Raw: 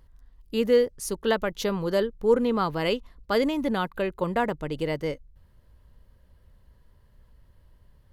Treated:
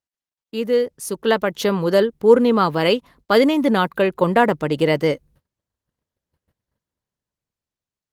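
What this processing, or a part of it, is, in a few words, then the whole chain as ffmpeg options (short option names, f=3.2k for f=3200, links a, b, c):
video call: -af "highpass=130,dynaudnorm=f=260:g=9:m=13.5dB,agate=range=-33dB:threshold=-48dB:ratio=16:detection=peak" -ar 48000 -c:a libopus -b:a 24k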